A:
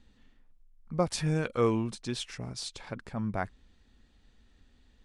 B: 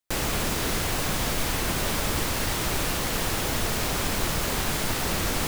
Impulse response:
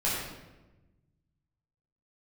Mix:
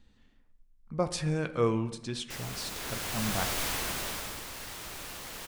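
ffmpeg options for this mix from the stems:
-filter_complex "[0:a]volume=-1.5dB,asplit=2[link_01][link_02];[link_02]volume=-22.5dB[link_03];[1:a]dynaudnorm=framelen=200:gausssize=9:maxgain=11.5dB,lowshelf=frequency=490:gain=-8,adelay=2200,volume=-12.5dB,afade=type=out:start_time=3.64:duration=0.77:silence=0.316228[link_04];[2:a]atrim=start_sample=2205[link_05];[link_03][link_05]afir=irnorm=-1:irlink=0[link_06];[link_01][link_04][link_06]amix=inputs=3:normalize=0,bandreject=frequency=81.27:width_type=h:width=4,bandreject=frequency=162.54:width_type=h:width=4,bandreject=frequency=243.81:width_type=h:width=4,bandreject=frequency=325.08:width_type=h:width=4,bandreject=frequency=406.35:width_type=h:width=4,bandreject=frequency=487.62:width_type=h:width=4,bandreject=frequency=568.89:width_type=h:width=4,bandreject=frequency=650.16:width_type=h:width=4,bandreject=frequency=731.43:width_type=h:width=4,bandreject=frequency=812.7:width_type=h:width=4,bandreject=frequency=893.97:width_type=h:width=4,bandreject=frequency=975.24:width_type=h:width=4,bandreject=frequency=1056.51:width_type=h:width=4,bandreject=frequency=1137.78:width_type=h:width=4,bandreject=frequency=1219.05:width_type=h:width=4,bandreject=frequency=1300.32:width_type=h:width=4,bandreject=frequency=1381.59:width_type=h:width=4,bandreject=frequency=1462.86:width_type=h:width=4,bandreject=frequency=1544.13:width_type=h:width=4,bandreject=frequency=1625.4:width_type=h:width=4,bandreject=frequency=1706.67:width_type=h:width=4,bandreject=frequency=1787.94:width_type=h:width=4,bandreject=frequency=1869.21:width_type=h:width=4,bandreject=frequency=1950.48:width_type=h:width=4,bandreject=frequency=2031.75:width_type=h:width=4,bandreject=frequency=2113.02:width_type=h:width=4,bandreject=frequency=2194.29:width_type=h:width=4,bandreject=frequency=2275.56:width_type=h:width=4,bandreject=frequency=2356.83:width_type=h:width=4"

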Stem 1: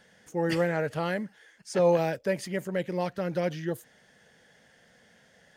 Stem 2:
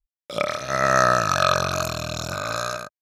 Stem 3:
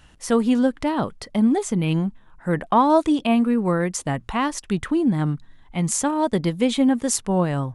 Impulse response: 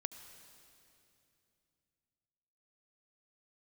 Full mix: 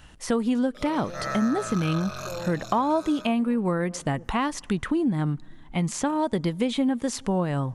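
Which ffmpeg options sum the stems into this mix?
-filter_complex "[0:a]afwtdn=0.0316,adelay=500,volume=-14dB[link_01];[1:a]asplit=2[link_02][link_03];[link_03]adelay=7.3,afreqshift=-0.83[link_04];[link_02][link_04]amix=inputs=2:normalize=1,adelay=450,volume=-7dB[link_05];[2:a]acrossover=split=4900[link_06][link_07];[link_07]acompressor=threshold=-37dB:ratio=4:attack=1:release=60[link_08];[link_06][link_08]amix=inputs=2:normalize=0,volume=1.5dB,asplit=2[link_09][link_10];[link_10]volume=-21dB[link_11];[3:a]atrim=start_sample=2205[link_12];[link_11][link_12]afir=irnorm=-1:irlink=0[link_13];[link_01][link_05][link_09][link_13]amix=inputs=4:normalize=0,acompressor=threshold=-23dB:ratio=3"

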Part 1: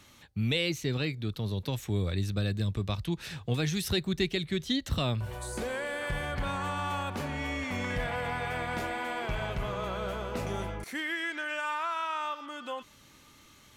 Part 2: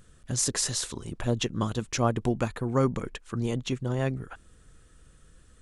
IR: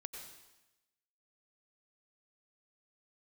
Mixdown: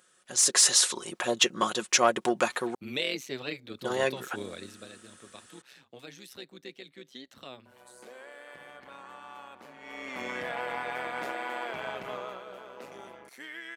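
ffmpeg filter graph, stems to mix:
-filter_complex "[0:a]tremolo=f=130:d=0.71,adynamicequalizer=threshold=0.00398:dfrequency=3300:dqfactor=0.7:tfrequency=3300:tqfactor=0.7:attack=5:release=100:ratio=0.375:range=2:mode=cutabove:tftype=highshelf,adelay=2450,volume=5.5dB,afade=type=out:start_time=4.39:duration=0.52:silence=0.251189,afade=type=in:start_time=9.78:duration=0.44:silence=0.237137,afade=type=out:start_time=12.1:duration=0.33:silence=0.375837[link_01];[1:a]asoftclip=type=tanh:threshold=-15.5dB,lowshelf=frequency=460:gain=-10,aecho=1:1:5.5:0.42,volume=-0.5dB,asplit=3[link_02][link_03][link_04];[link_02]atrim=end=2.75,asetpts=PTS-STARTPTS,afade=type=out:start_time=2.746:duration=0.004:curve=hsin[link_05];[link_03]atrim=start=2.75:end=3.79,asetpts=PTS-STARTPTS,volume=0[link_06];[link_04]atrim=start=3.79,asetpts=PTS-STARTPTS,afade=type=in:duration=0.004:curve=hsin[link_07];[link_05][link_06][link_07]concat=n=3:v=0:a=1[link_08];[link_01][link_08]amix=inputs=2:normalize=0,dynaudnorm=framelen=130:gausssize=7:maxgain=9.5dB,highpass=340"

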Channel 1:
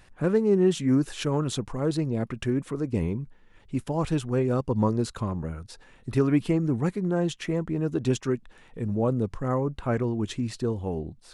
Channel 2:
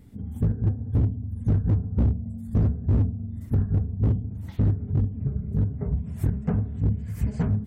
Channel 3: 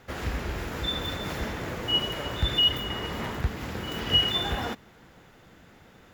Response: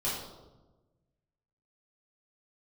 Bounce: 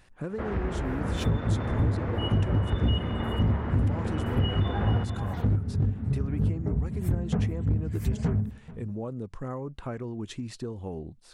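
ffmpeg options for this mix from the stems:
-filter_complex "[0:a]acompressor=threshold=-27dB:ratio=10,volume=-3.5dB[link_01];[1:a]adelay=850,volume=2dB,asplit=2[link_02][link_03];[link_03]volume=-22dB[link_04];[2:a]lowpass=1400,adelay=300,volume=2.5dB,asplit=2[link_05][link_06];[link_06]volume=-9.5dB[link_07];[link_04][link_07]amix=inputs=2:normalize=0,aecho=0:1:435:1[link_08];[link_01][link_02][link_05][link_08]amix=inputs=4:normalize=0,acompressor=threshold=-25dB:ratio=2"

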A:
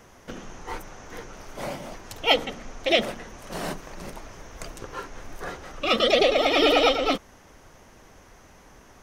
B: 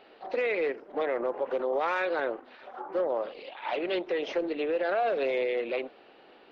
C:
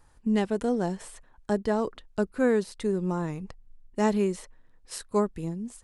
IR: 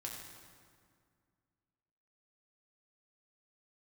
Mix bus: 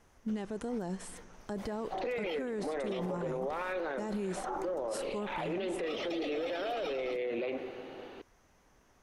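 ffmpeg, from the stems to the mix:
-filter_complex "[0:a]volume=-14.5dB[link_01];[1:a]equalizer=frequency=84:width=0.34:gain=10,acompressor=threshold=-28dB:ratio=6,adelay=1700,volume=1.5dB,asplit=2[link_02][link_03];[link_03]volume=-4.5dB[link_04];[2:a]dynaudnorm=framelen=360:gausssize=3:maxgain=7dB,volume=-9.5dB,asplit=2[link_05][link_06];[link_06]volume=-20.5dB[link_07];[3:a]atrim=start_sample=2205[link_08];[link_04][link_07]amix=inputs=2:normalize=0[link_09];[link_09][link_08]afir=irnorm=-1:irlink=0[link_10];[link_01][link_02][link_05][link_10]amix=inputs=4:normalize=0,alimiter=level_in=4dB:limit=-24dB:level=0:latency=1:release=27,volume=-4dB"

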